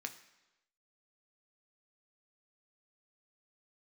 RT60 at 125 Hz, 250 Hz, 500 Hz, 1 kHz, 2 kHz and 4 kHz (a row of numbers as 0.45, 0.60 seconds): 0.90, 0.95, 1.0, 1.0, 1.0, 0.95 seconds